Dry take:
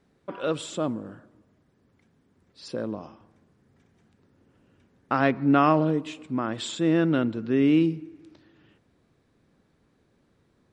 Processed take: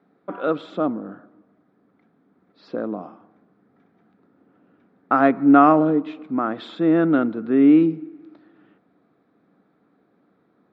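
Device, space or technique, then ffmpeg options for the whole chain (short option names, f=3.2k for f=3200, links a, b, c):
kitchen radio: -af "highpass=190,equalizer=f=190:t=q:w=4:g=8,equalizer=f=290:t=q:w=4:g=8,equalizer=f=450:t=q:w=4:g=4,equalizer=f=720:t=q:w=4:g=9,equalizer=f=1.3k:t=q:w=4:g=9,equalizer=f=2.9k:t=q:w=4:g=-8,lowpass=f=3.6k:w=0.5412,lowpass=f=3.6k:w=1.3066"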